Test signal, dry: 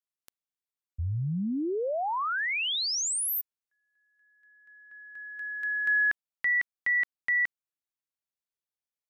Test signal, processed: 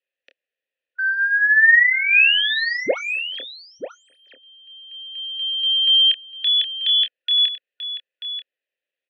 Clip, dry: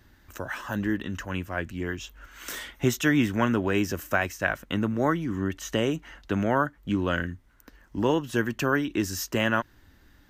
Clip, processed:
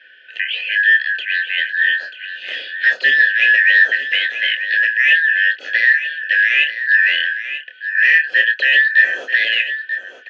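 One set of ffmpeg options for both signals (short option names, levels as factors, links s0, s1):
-filter_complex "[0:a]afftfilt=real='real(if(lt(b,272),68*(eq(floor(b/68),0)*3+eq(floor(b/68),1)*0+eq(floor(b/68),2)*1+eq(floor(b/68),3)*2)+mod(b,68),b),0)':imag='imag(if(lt(b,272),68*(eq(floor(b/68),0)*3+eq(floor(b/68),1)*0+eq(floor(b/68),2)*1+eq(floor(b/68),3)*2)+mod(b,68),b),0)':win_size=2048:overlap=0.75,acrossover=split=330|1100[s0][s1][s2];[s1]acontrast=58[s3];[s0][s3][s2]amix=inputs=3:normalize=0,aeval=exprs='0.355*(cos(1*acos(clip(val(0)/0.355,-1,1)))-cos(1*PI/2))+0.158*(cos(5*acos(clip(val(0)/0.355,-1,1)))-cos(5*PI/2))':c=same,crystalizer=i=6.5:c=0,asplit=2[s4][s5];[s5]asoftclip=type=tanh:threshold=0.531,volume=0.355[s6];[s4][s6]amix=inputs=2:normalize=0,asplit=3[s7][s8][s9];[s7]bandpass=f=530:t=q:w=8,volume=1[s10];[s8]bandpass=f=1840:t=q:w=8,volume=0.501[s11];[s9]bandpass=f=2480:t=q:w=8,volume=0.355[s12];[s10][s11][s12]amix=inputs=3:normalize=0,highpass=160,equalizer=f=270:t=q:w=4:g=5,equalizer=f=530:t=q:w=4:g=-3,equalizer=f=840:t=q:w=4:g=-7,lowpass=f=3500:w=0.5412,lowpass=f=3500:w=1.3066,asplit=2[s13][s14];[s14]adelay=27,volume=0.422[s15];[s13][s15]amix=inputs=2:normalize=0,aecho=1:1:937:0.282,volume=1.58"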